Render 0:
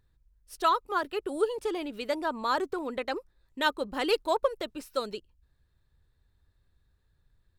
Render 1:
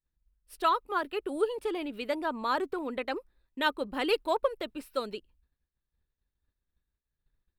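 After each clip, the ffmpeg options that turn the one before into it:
-af "agate=range=0.0224:threshold=0.00126:ratio=3:detection=peak,equalizer=f=100:t=o:w=0.67:g=-9,equalizer=f=250:t=o:w=0.67:g=3,equalizer=f=2500:t=o:w=0.67:g=3,equalizer=f=6300:t=o:w=0.67:g=-9,volume=0.841"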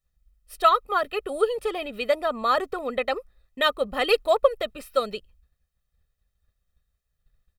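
-af "aecho=1:1:1.6:0.71,volume=1.88"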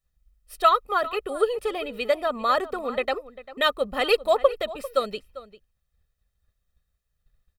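-filter_complex "[0:a]asplit=2[s0][s1];[s1]adelay=396.5,volume=0.158,highshelf=f=4000:g=-8.92[s2];[s0][s2]amix=inputs=2:normalize=0"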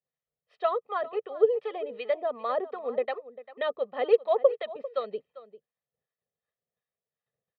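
-filter_complex "[0:a]acrossover=split=770[s0][s1];[s0]aeval=exprs='val(0)*(1-0.7/2+0.7/2*cos(2*PI*2.7*n/s))':c=same[s2];[s1]aeval=exprs='val(0)*(1-0.7/2-0.7/2*cos(2*PI*2.7*n/s))':c=same[s3];[s2][s3]amix=inputs=2:normalize=0,highpass=f=160:w=0.5412,highpass=f=160:w=1.3066,equalizer=f=190:t=q:w=4:g=-6,equalizer=f=300:t=q:w=4:g=-9,equalizer=f=460:t=q:w=4:g=7,equalizer=f=690:t=q:w=4:g=3,equalizer=f=1400:t=q:w=4:g=-9,equalizer=f=2600:t=q:w=4:g=-7,lowpass=f=3000:w=0.5412,lowpass=f=3000:w=1.3066,volume=0.75"

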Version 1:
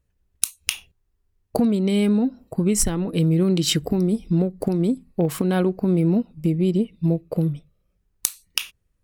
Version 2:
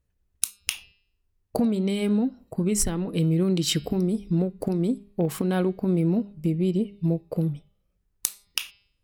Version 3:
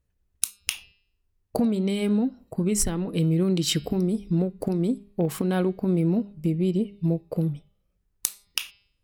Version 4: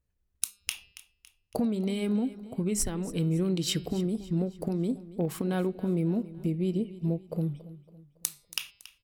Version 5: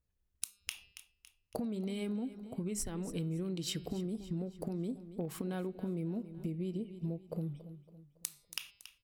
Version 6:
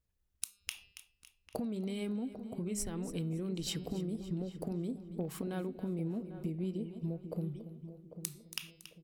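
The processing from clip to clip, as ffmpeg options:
-af "bandreject=f=202.1:t=h:w=4,bandreject=f=404.2:t=h:w=4,bandreject=f=606.3:t=h:w=4,bandreject=f=808.4:t=h:w=4,bandreject=f=1010.5:t=h:w=4,bandreject=f=1212.6:t=h:w=4,bandreject=f=1414.7:t=h:w=4,bandreject=f=1616.8:t=h:w=4,bandreject=f=1818.9:t=h:w=4,bandreject=f=2021:t=h:w=4,bandreject=f=2223.1:t=h:w=4,bandreject=f=2425.2:t=h:w=4,bandreject=f=2627.3:t=h:w=4,bandreject=f=2829.4:t=h:w=4,bandreject=f=3031.5:t=h:w=4,bandreject=f=3233.6:t=h:w=4,bandreject=f=3435.7:t=h:w=4,bandreject=f=3637.8:t=h:w=4,bandreject=f=3839.9:t=h:w=4,bandreject=f=4042:t=h:w=4,bandreject=f=4244.1:t=h:w=4,bandreject=f=4446.2:t=h:w=4,bandreject=f=4648.3:t=h:w=4,bandreject=f=4850.4:t=h:w=4,bandreject=f=5052.5:t=h:w=4,bandreject=f=5254.6:t=h:w=4,volume=0.668"
-af anull
-af "aecho=1:1:279|558|837|1116:0.141|0.0622|0.0273|0.012,volume=0.562"
-af "acompressor=threshold=0.0316:ratio=6,volume=0.631"
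-filter_complex "[0:a]asplit=2[s0][s1];[s1]adelay=797,lowpass=f=900:p=1,volume=0.316,asplit=2[s2][s3];[s3]adelay=797,lowpass=f=900:p=1,volume=0.31,asplit=2[s4][s5];[s5]adelay=797,lowpass=f=900:p=1,volume=0.31[s6];[s0][s2][s4][s6]amix=inputs=4:normalize=0"

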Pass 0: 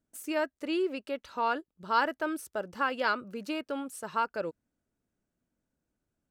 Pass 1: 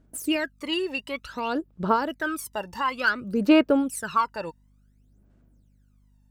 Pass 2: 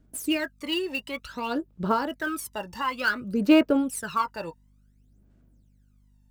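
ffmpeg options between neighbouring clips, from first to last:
-af "alimiter=limit=0.0841:level=0:latency=1:release=314,aphaser=in_gain=1:out_gain=1:delay=1.1:decay=0.79:speed=0.56:type=sinusoidal,aeval=exprs='val(0)+0.000631*(sin(2*PI*50*n/s)+sin(2*PI*2*50*n/s)/2+sin(2*PI*3*50*n/s)/3+sin(2*PI*4*50*n/s)/4+sin(2*PI*5*50*n/s)/5)':c=same,volume=1.78"
-filter_complex "[0:a]acrossover=split=470|1700[s0][s1][s2];[s1]flanger=delay=16:depth=4.7:speed=0.76[s3];[s2]acrusher=bits=4:mode=log:mix=0:aa=0.000001[s4];[s0][s3][s4]amix=inputs=3:normalize=0"

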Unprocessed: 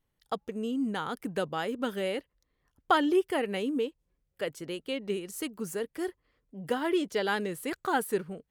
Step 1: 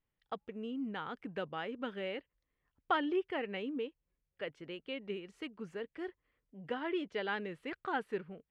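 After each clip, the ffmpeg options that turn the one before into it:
-af "lowpass=f=2600:t=q:w=1.5,volume=0.376"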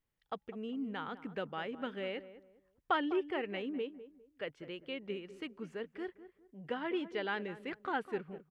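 -filter_complex "[0:a]asplit=2[s0][s1];[s1]adelay=202,lowpass=f=1100:p=1,volume=0.224,asplit=2[s2][s3];[s3]adelay=202,lowpass=f=1100:p=1,volume=0.31,asplit=2[s4][s5];[s5]adelay=202,lowpass=f=1100:p=1,volume=0.31[s6];[s0][s2][s4][s6]amix=inputs=4:normalize=0"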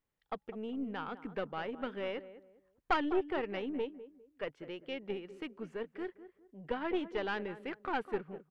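-af "equalizer=f=600:w=0.3:g=6,aeval=exprs='(tanh(10*val(0)+0.7)-tanh(0.7))/10':c=same"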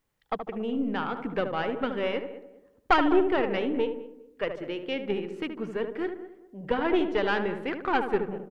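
-filter_complex "[0:a]asplit=2[s0][s1];[s1]adelay=75,lowpass=f=1200:p=1,volume=0.501,asplit=2[s2][s3];[s3]adelay=75,lowpass=f=1200:p=1,volume=0.47,asplit=2[s4][s5];[s5]adelay=75,lowpass=f=1200:p=1,volume=0.47,asplit=2[s6][s7];[s7]adelay=75,lowpass=f=1200:p=1,volume=0.47,asplit=2[s8][s9];[s9]adelay=75,lowpass=f=1200:p=1,volume=0.47,asplit=2[s10][s11];[s11]adelay=75,lowpass=f=1200:p=1,volume=0.47[s12];[s0][s2][s4][s6][s8][s10][s12]amix=inputs=7:normalize=0,volume=2.82"

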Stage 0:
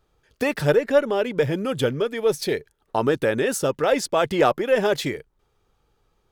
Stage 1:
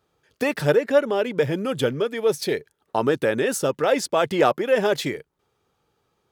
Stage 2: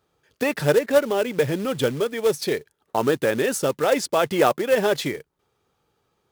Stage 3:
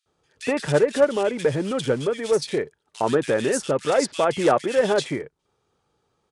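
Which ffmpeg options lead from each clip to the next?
-af "highpass=110"
-af "acrusher=bits=4:mode=log:mix=0:aa=0.000001"
-filter_complex "[0:a]acrossover=split=2300[s0][s1];[s0]adelay=60[s2];[s2][s1]amix=inputs=2:normalize=0,aresample=22050,aresample=44100"

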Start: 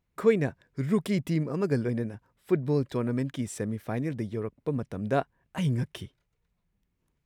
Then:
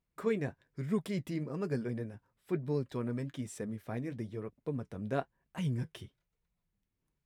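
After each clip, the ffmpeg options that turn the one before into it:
-af "flanger=delay=4.3:depth=5.4:regen=-54:speed=1.1:shape=triangular,volume=0.668"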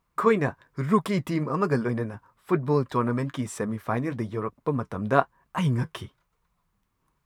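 -af "equalizer=f=1100:w=1.7:g=14,volume=2.82"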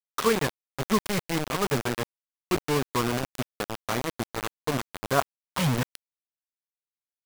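-af "acrusher=bits=3:mix=0:aa=0.000001,volume=0.708"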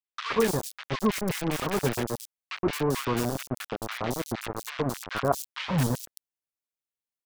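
-filter_complex "[0:a]acrossover=split=1300|4500[s0][s1][s2];[s0]adelay=120[s3];[s2]adelay=220[s4];[s3][s1][s4]amix=inputs=3:normalize=0"

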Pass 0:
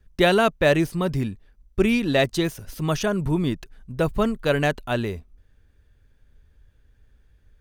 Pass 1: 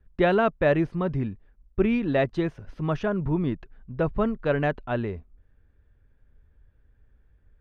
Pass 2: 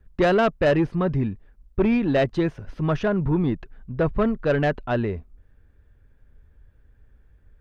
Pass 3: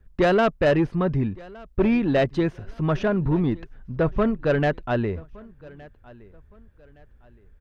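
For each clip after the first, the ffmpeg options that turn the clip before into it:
-af "lowpass=1900,volume=0.75"
-af "asoftclip=type=tanh:threshold=0.126,volume=1.78"
-af "aecho=1:1:1166|2332:0.0708|0.0234"

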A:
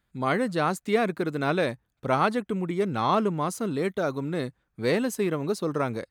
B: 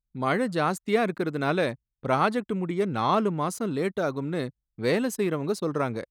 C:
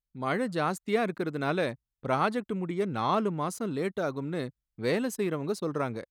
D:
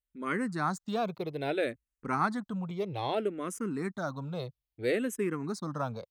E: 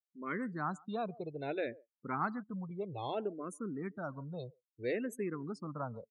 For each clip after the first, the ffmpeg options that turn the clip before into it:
-af "anlmdn=0.0398"
-af "dynaudnorm=f=170:g=3:m=1.5,volume=0.447"
-filter_complex "[0:a]asplit=2[s0][s1];[s1]afreqshift=-0.61[s2];[s0][s2]amix=inputs=2:normalize=1"
-filter_complex "[0:a]asplit=2[s0][s1];[s1]adelay=140,highpass=300,lowpass=3400,asoftclip=type=hard:threshold=0.0562,volume=0.112[s2];[s0][s2]amix=inputs=2:normalize=0,afftdn=nr=35:nf=-41,volume=0.501"

